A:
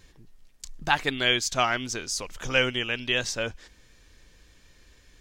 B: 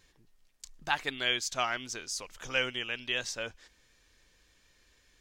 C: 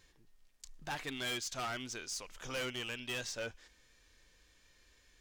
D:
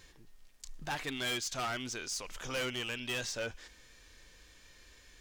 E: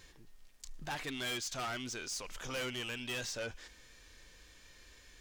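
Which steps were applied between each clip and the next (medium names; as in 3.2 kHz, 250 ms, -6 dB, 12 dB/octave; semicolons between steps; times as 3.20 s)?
bass shelf 370 Hz -7.5 dB; trim -6 dB
harmonic-percussive split harmonic +6 dB; overload inside the chain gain 30 dB; trim -5 dB
peak limiter -40 dBFS, peak gain reduction 5 dB; trim +8 dB
saturation -34 dBFS, distortion -17 dB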